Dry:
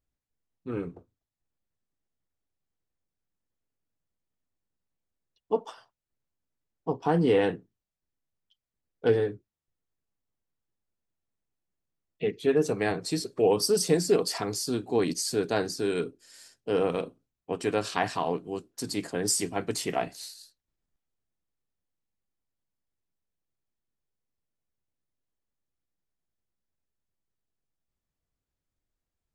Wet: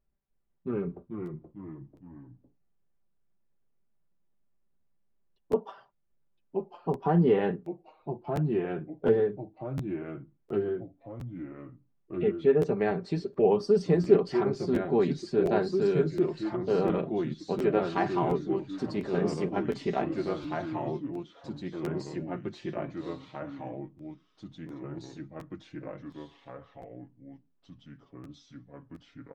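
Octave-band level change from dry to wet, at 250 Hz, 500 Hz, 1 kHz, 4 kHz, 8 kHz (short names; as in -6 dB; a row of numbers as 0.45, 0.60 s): +3.0 dB, +1.5 dB, +0.5 dB, -11.5 dB, under -20 dB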